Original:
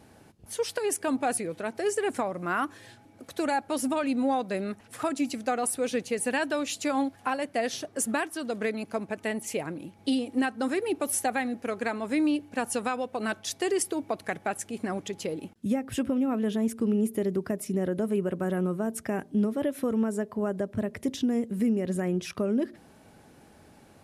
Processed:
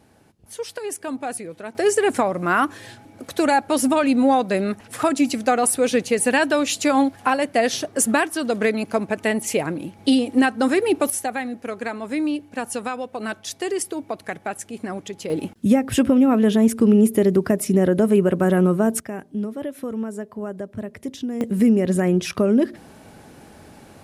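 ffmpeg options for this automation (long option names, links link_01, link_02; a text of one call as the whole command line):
ffmpeg -i in.wav -af "asetnsamples=nb_out_samples=441:pad=0,asendcmd='1.75 volume volume 9.5dB;11.1 volume volume 2dB;15.3 volume volume 11dB;19 volume volume -1dB;21.41 volume volume 9.5dB',volume=-1dB" out.wav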